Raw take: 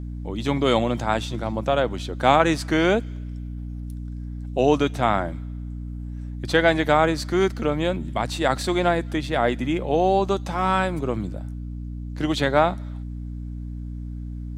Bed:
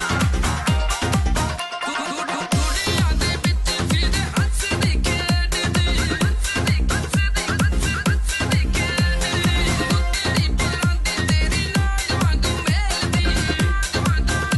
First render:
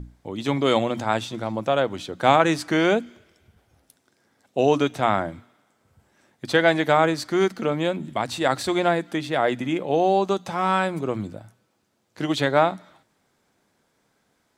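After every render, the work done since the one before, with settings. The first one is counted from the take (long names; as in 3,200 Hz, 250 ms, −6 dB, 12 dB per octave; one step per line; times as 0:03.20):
mains-hum notches 60/120/180/240/300 Hz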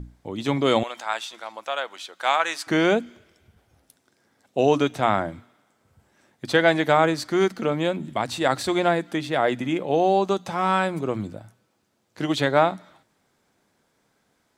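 0:00.83–0:02.67: high-pass filter 970 Hz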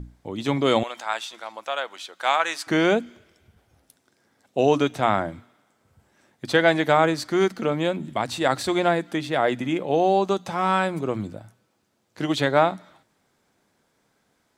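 no processing that can be heard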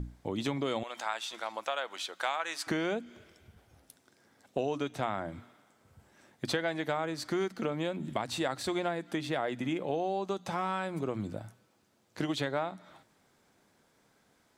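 downward compressor 5 to 1, threshold −30 dBFS, peak gain reduction 16 dB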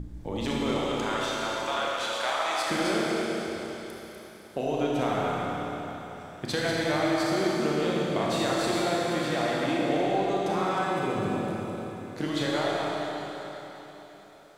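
delay that plays each chunk backwards 161 ms, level −5 dB
four-comb reverb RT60 3.9 s, combs from 27 ms, DRR −4.5 dB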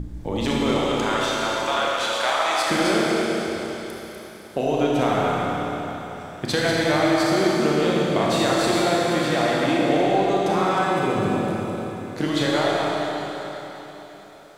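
level +6.5 dB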